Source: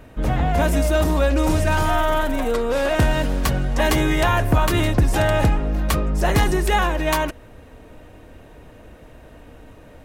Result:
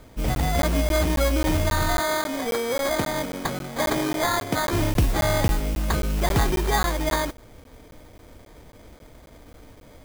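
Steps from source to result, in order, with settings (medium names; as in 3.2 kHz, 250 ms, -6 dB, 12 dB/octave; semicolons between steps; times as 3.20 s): 1.99–4.73 s: high-pass 200 Hz 12 dB/octave; sample-and-hold 16×; modulation noise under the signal 19 dB; crackling interface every 0.27 s, samples 512, zero, from 0.35 s; trim -3.5 dB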